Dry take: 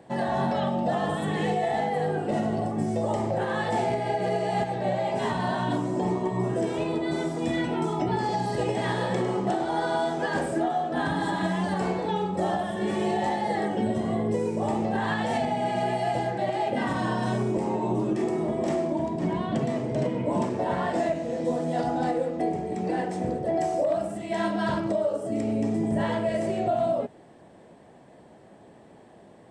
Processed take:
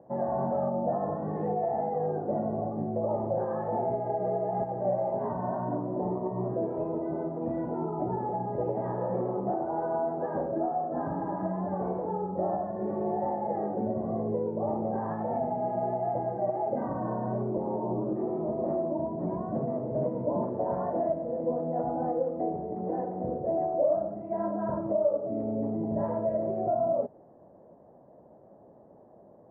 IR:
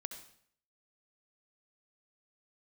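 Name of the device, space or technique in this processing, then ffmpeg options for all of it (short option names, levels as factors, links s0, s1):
under water: -af "lowpass=f=1100:w=0.5412,lowpass=f=1100:w=1.3066,equalizer=f=570:t=o:w=0.47:g=7,volume=0.531"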